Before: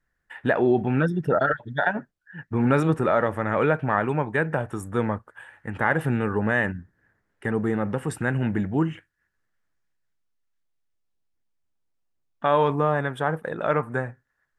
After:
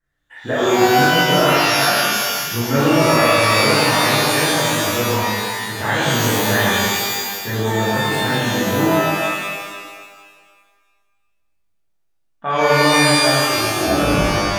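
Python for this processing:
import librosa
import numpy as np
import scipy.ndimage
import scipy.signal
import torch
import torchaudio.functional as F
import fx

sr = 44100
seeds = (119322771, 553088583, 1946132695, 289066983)

y = fx.tape_stop_end(x, sr, length_s=1.43)
y = fx.rev_shimmer(y, sr, seeds[0], rt60_s=1.6, semitones=12, shimmer_db=-2, drr_db=-9.5)
y = F.gain(torch.from_numpy(y), -5.5).numpy()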